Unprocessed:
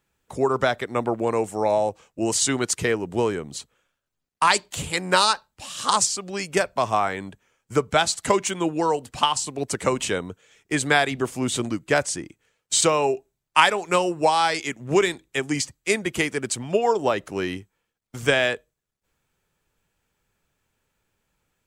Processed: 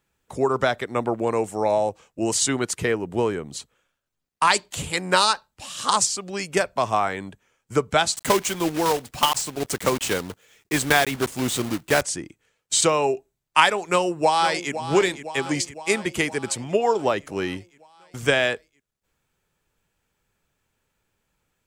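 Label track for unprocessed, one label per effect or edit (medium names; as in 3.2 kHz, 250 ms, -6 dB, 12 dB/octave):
2.460000	3.460000	peaking EQ 6 kHz -4.5 dB 1.5 oct
8.160000	12.030000	block-companded coder 3-bit
13.870000	14.720000	echo throw 510 ms, feedback 65%, level -11.5 dB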